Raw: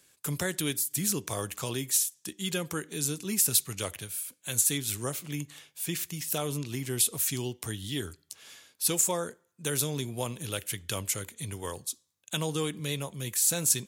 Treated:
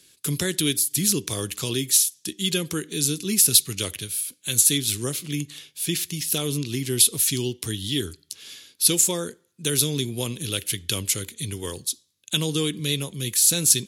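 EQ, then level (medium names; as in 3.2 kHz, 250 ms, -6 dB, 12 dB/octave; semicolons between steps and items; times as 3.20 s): resonant low shelf 510 Hz +8.5 dB, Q 1.5; peaking EQ 4 kHz +14.5 dB 2 oct; peaking EQ 11 kHz +11 dB 0.31 oct; -3.0 dB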